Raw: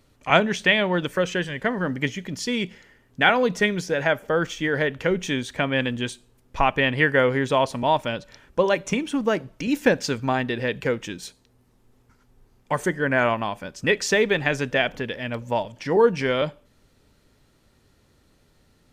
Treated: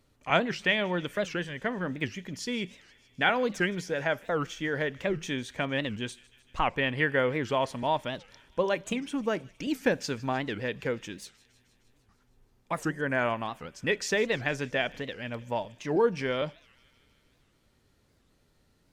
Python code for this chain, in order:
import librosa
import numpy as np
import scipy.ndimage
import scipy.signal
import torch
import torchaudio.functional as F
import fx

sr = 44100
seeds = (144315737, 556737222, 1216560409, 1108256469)

p1 = x + fx.echo_wet_highpass(x, sr, ms=154, feedback_pct=70, hz=2300.0, wet_db=-20, dry=0)
p2 = fx.record_warp(p1, sr, rpm=78.0, depth_cents=250.0)
y = F.gain(torch.from_numpy(p2), -7.0).numpy()